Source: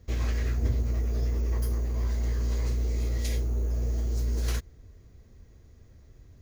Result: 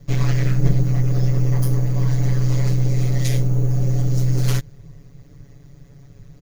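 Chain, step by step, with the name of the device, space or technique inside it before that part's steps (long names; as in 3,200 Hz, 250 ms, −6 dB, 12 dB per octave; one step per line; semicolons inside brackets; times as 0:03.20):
ring-modulated robot voice (ring modulation 67 Hz; comb filter 7.1 ms, depth 93%)
level +8.5 dB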